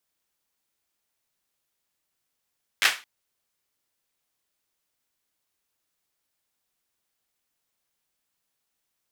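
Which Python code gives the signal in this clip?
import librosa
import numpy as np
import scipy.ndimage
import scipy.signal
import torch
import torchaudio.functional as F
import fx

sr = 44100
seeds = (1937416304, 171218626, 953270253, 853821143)

y = fx.drum_clap(sr, seeds[0], length_s=0.22, bursts=4, spacing_ms=10, hz=2100.0, decay_s=0.29)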